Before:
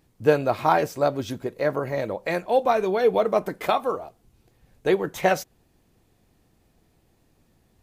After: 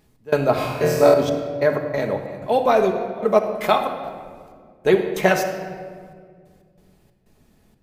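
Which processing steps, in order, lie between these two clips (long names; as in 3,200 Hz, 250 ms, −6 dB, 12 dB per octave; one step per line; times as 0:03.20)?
gate pattern "x.xx.xxx.." 93 BPM −24 dB
0:00.54–0:01.14: flutter between parallel walls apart 4.2 metres, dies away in 1 s
rectangular room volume 3,000 cubic metres, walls mixed, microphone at 1.4 metres
level +3.5 dB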